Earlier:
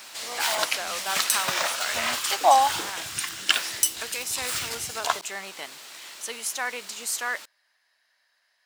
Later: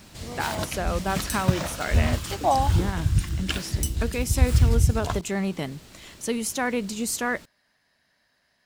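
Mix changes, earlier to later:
background −9.0 dB
master: remove high-pass filter 890 Hz 12 dB per octave

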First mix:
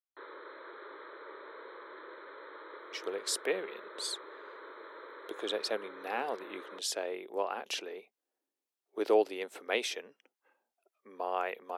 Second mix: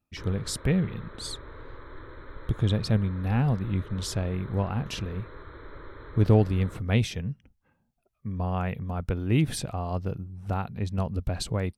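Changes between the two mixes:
speech: entry −2.80 s
master: remove Butterworth high-pass 360 Hz 36 dB per octave

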